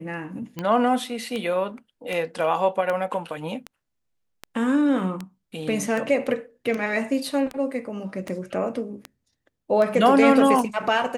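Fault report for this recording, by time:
tick 78 rpm -16 dBFS

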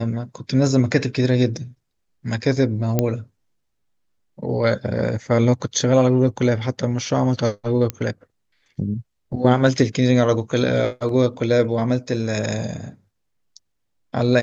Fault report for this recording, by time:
2.99 pop -5 dBFS
7.9 pop -9 dBFS

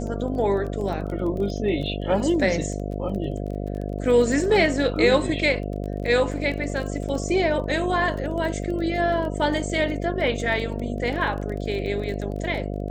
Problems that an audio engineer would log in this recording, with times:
buzz 50 Hz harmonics 14 -29 dBFS
crackle 19/s -31 dBFS

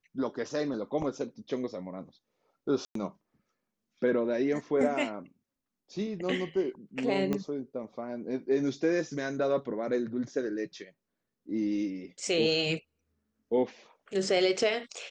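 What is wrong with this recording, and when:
2.85–2.95 gap 0.103 s
7.33 pop -18 dBFS

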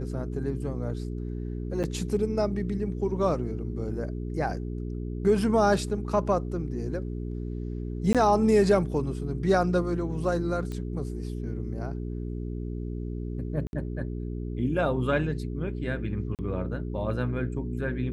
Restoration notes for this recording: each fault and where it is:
hum 60 Hz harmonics 7 -33 dBFS
1.83–1.84 gap 8.1 ms
8.13–8.15 gap 17 ms
10.72 pop -24 dBFS
13.67–13.73 gap 61 ms
16.35–16.39 gap 38 ms

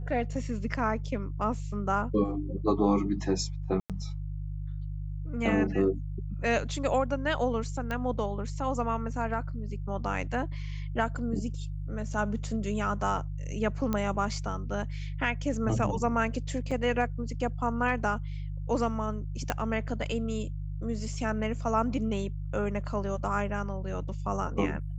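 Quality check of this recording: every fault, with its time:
hum 50 Hz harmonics 3 -35 dBFS
3.8–3.9 gap 97 ms
7.91 pop -20 dBFS
13.93 pop -16 dBFS
16.71–16.72 gap 5.2 ms
19.5 pop -13 dBFS

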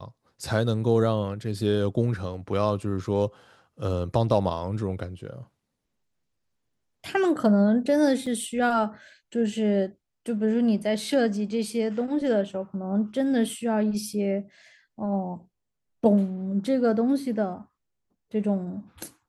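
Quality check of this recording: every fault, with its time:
8.26 gap 4.9 ms

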